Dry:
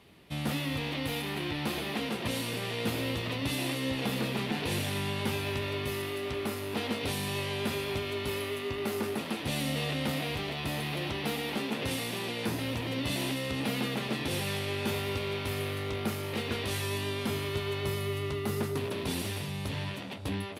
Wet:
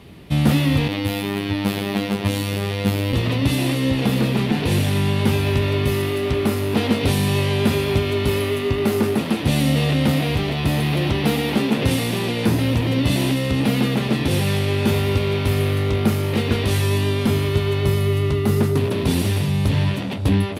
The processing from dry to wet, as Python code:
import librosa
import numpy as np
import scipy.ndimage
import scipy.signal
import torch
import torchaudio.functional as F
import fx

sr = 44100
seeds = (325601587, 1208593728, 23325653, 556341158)

y = fx.low_shelf(x, sr, hz=330.0, db=10.0)
y = fx.rider(y, sr, range_db=3, speed_s=2.0)
y = fx.robotise(y, sr, hz=100.0, at=(0.88, 3.13))
y = y * librosa.db_to_amplitude(8.0)